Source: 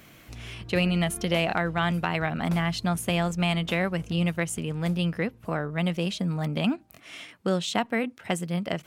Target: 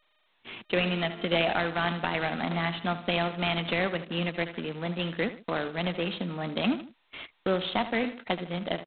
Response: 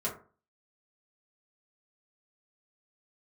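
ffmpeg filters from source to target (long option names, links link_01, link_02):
-af "highpass=frequency=210:width=0.5412,highpass=frequency=210:width=1.3066,aecho=1:1:77|154|231|308:0.224|0.101|0.0453|0.0204,agate=range=-36dB:threshold=-43dB:ratio=16:detection=peak,anlmdn=0.0631" -ar 8000 -c:a adpcm_g726 -b:a 16k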